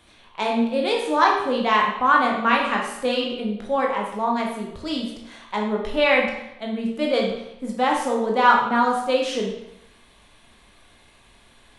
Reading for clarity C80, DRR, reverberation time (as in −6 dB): 6.5 dB, −1.5 dB, 0.80 s